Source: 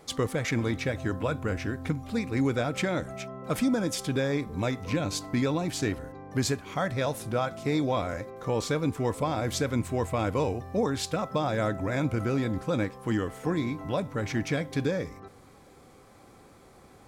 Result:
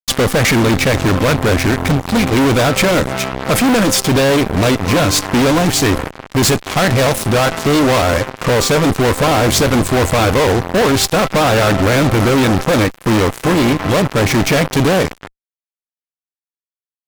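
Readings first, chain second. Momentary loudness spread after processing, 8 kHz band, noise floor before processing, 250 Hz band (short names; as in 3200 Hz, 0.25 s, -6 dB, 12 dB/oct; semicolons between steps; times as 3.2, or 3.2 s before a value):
3 LU, +19.5 dB, -54 dBFS, +14.5 dB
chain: added harmonics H 3 -23 dB, 5 -33 dB, 6 -23 dB, 7 -20 dB, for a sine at -16 dBFS; fuzz box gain 47 dB, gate -51 dBFS; gain +3 dB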